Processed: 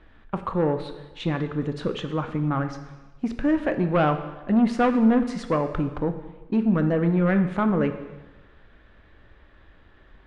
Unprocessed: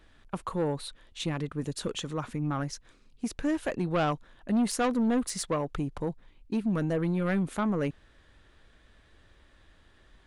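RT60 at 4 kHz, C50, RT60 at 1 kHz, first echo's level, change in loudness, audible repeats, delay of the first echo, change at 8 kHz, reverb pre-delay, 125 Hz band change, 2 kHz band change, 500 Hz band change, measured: 1.1 s, 10.0 dB, 1.1 s, no echo audible, +6.5 dB, no echo audible, no echo audible, below −10 dB, 6 ms, +6.5 dB, +5.5 dB, +6.5 dB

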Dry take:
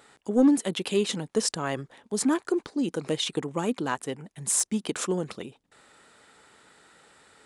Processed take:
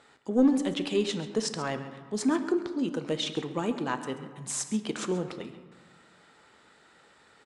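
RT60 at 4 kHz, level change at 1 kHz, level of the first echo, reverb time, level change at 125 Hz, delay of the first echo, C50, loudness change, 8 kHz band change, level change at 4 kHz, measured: 0.90 s, −1.5 dB, −15.0 dB, 1.5 s, −2.0 dB, 135 ms, 10.0 dB, −2.5 dB, −7.5 dB, −2.5 dB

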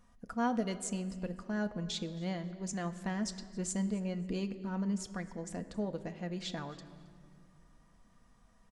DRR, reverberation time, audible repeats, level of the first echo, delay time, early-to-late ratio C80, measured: 6.0 dB, 2.1 s, 2, −21.5 dB, 269 ms, 13.5 dB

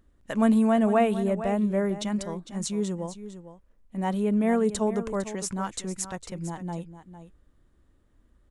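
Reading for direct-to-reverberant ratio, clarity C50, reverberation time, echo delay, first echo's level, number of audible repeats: no reverb audible, no reverb audible, no reverb audible, 454 ms, −12.5 dB, 1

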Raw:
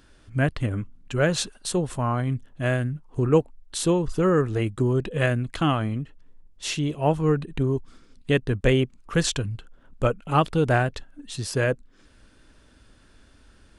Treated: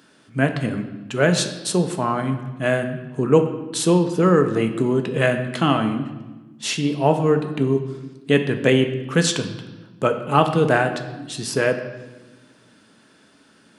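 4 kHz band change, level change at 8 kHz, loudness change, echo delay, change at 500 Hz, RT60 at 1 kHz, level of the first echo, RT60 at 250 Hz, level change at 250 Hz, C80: +5.0 dB, +4.5 dB, +4.0 dB, no echo audible, +5.0 dB, 1.1 s, no echo audible, 1.8 s, +5.0 dB, 11.0 dB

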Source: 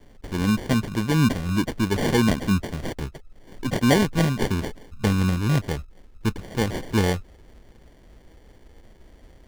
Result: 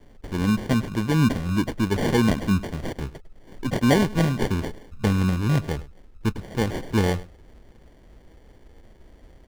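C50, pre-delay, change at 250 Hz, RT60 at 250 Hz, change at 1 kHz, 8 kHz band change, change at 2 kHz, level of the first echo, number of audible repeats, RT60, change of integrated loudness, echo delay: no reverb audible, no reverb audible, 0.0 dB, no reverb audible, −0.5 dB, −3.0 dB, −1.5 dB, −18.5 dB, 1, no reverb audible, 0.0 dB, 102 ms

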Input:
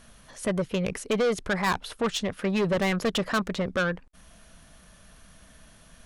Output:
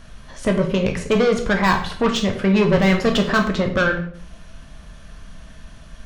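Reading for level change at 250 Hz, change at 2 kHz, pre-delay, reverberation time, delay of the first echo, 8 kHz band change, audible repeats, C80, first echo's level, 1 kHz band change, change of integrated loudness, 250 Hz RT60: +9.5 dB, +8.5 dB, 9 ms, 0.55 s, no echo audible, +2.5 dB, no echo audible, 12.5 dB, no echo audible, +8.0 dB, +8.5 dB, 0.65 s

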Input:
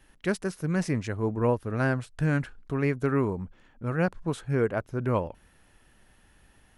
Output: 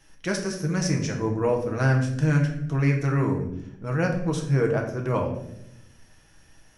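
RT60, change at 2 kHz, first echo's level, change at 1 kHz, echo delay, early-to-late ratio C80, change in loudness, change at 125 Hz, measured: 0.80 s, +2.5 dB, no echo audible, +2.0 dB, no echo audible, 10.0 dB, +3.5 dB, +6.0 dB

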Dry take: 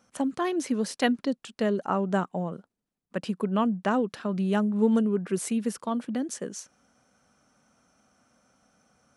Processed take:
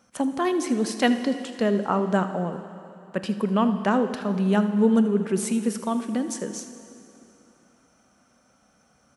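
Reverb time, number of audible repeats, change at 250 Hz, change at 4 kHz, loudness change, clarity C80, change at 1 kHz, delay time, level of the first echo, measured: 2.9 s, 1, +4.0 dB, +3.5 dB, +3.5 dB, 11.0 dB, +3.5 dB, 79 ms, −15.5 dB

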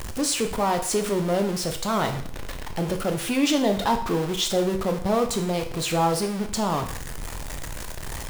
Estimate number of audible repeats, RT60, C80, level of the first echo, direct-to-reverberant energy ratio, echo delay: no echo audible, 0.55 s, 13.5 dB, no echo audible, 5.5 dB, no echo audible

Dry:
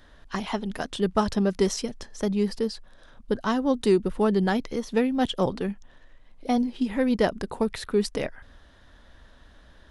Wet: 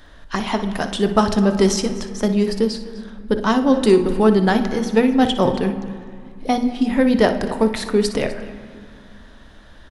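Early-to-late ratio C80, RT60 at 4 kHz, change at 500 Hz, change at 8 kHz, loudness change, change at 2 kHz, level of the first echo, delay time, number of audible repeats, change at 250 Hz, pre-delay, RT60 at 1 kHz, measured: 11.5 dB, 1.1 s, +7.5 dB, +8.0 dB, +7.5 dB, +8.0 dB, −12.5 dB, 60 ms, 2, +8.0 dB, 3 ms, 2.2 s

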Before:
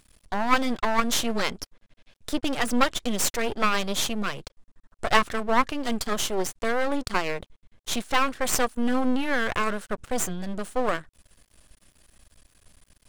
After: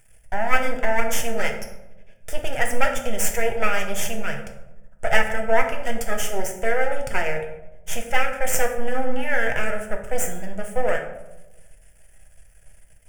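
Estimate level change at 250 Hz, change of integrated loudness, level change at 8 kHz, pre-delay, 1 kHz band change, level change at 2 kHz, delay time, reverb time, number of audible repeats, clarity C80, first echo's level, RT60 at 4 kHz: −6.0 dB, +1.5 dB, +1.0 dB, 3 ms, −0.5 dB, +4.0 dB, no echo audible, 1.0 s, no echo audible, 10.0 dB, no echo audible, 0.50 s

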